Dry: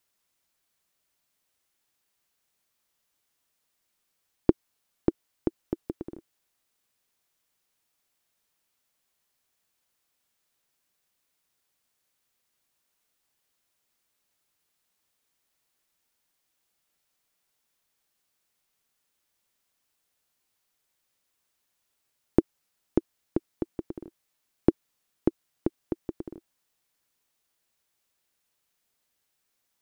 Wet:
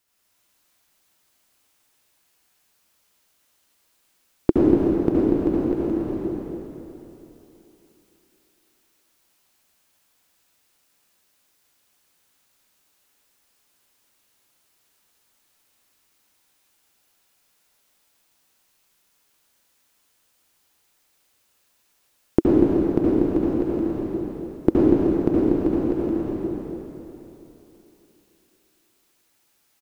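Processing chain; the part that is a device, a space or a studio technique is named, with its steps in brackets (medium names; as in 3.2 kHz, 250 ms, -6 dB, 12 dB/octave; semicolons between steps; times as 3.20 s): cave (delay 240 ms -8 dB; reverberation RT60 3.2 s, pre-delay 64 ms, DRR -8 dB); trim +2.5 dB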